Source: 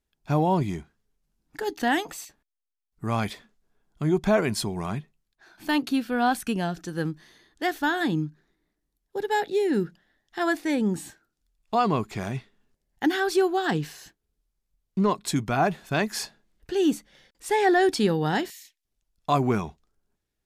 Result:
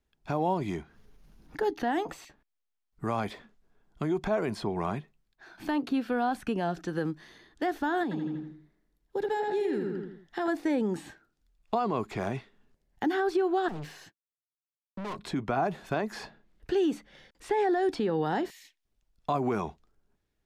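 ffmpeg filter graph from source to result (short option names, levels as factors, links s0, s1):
-filter_complex "[0:a]asettb=1/sr,asplit=3[s0][s1][s2];[s0]atrim=end=0.774[s3];[s1]atrim=start=0.77:end=1.89,asetpts=PTS-STARTPTS,afade=t=in:d=0.004:c=qsin,afade=t=out:st=1.116:d=0.004:c=qsin,bandreject=f=7700:w=5.3,acompressor=mode=upward:threshold=0.00631:ratio=2.5:attack=3.2:release=140:knee=2.83:detection=peak[s4];[s2]atrim=start=1.886[s5];[s3][s4]acrossfade=d=0.004:c1=hsin:c2=qsin[s6];[s6][s5]acrossfade=d=0.004:c1=qsin:c2=hsin,asettb=1/sr,asplit=3[s7][s8][s9];[s7]atrim=end=8.034[s10];[s8]atrim=start=8.03:end=10.48,asetpts=PTS-STARTPTS,afade=t=in:d=0.004:c=qsin,afade=t=out:st=2.446:d=0.004:c=qsin,asplit=2[s11][s12];[s12]adelay=81,lowpass=f=4300:p=1,volume=0.631,asplit=2[s13][s14];[s14]adelay=81,lowpass=f=4300:p=1,volume=0.42,asplit=2[s15][s16];[s16]adelay=81,lowpass=f=4300:p=1,volume=0.42,asplit=2[s17][s18];[s18]adelay=81,lowpass=f=4300:p=1,volume=0.42,asplit=2[s19][s20];[s20]adelay=81,lowpass=f=4300:p=1,volume=0.42[s21];[s11][s13][s15][s17][s19][s21]amix=inputs=6:normalize=0,atrim=end_sample=108045,acompressor=threshold=0.0316:ratio=4:attack=3.2:release=140:knee=1:detection=peak[s22];[s9]atrim=start=10.476[s23];[s10][s22]acrossfade=d=0.004:c1=hsin:c2=qsin[s24];[s24][s23]acrossfade=d=0.004:c1=qsin:c2=hsin,asettb=1/sr,asplit=3[s25][s26][s27];[s25]atrim=end=13.684[s28];[s26]atrim=start=13.68:end=15.19,asetpts=PTS-STARTPTS,afade=t=in:d=0.004:c=qsin,afade=t=out:st=1.506:d=0.004:c=qsin,highpass=f=86:w=0.5412,highpass=f=86:w=1.3066,agate=range=0.0224:threshold=0.00501:ratio=3:release=100:detection=peak,aeval=exprs='(tanh(70.8*val(0)+0.25)-tanh(0.25))/70.8':c=same[s29];[s27]atrim=start=15.186[s30];[s28][s29]acrossfade=d=0.004:c1=hsin:c2=qsin[s31];[s31][s30]acrossfade=d=0.004:c1=qsin:c2=hsin,highshelf=f=5300:g=-10.5,alimiter=limit=0.1:level=0:latency=1:release=83,acrossover=split=290|1300|4000[s32][s33][s34][s35];[s32]acompressor=threshold=0.00891:ratio=4[s36];[s33]acompressor=threshold=0.0398:ratio=4[s37];[s34]acompressor=threshold=0.00398:ratio=4[s38];[s35]acompressor=threshold=0.00126:ratio=4[s39];[s36][s37][s38][s39]amix=inputs=4:normalize=0,volume=1.5"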